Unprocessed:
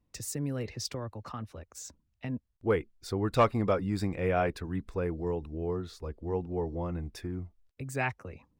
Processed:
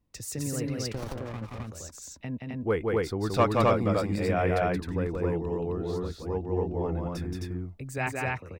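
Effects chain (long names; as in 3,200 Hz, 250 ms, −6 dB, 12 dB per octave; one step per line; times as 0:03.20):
loudspeakers that aren't time-aligned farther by 60 metres −3 dB, 90 metres −1 dB
0:00.94–0:01.67: windowed peak hold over 17 samples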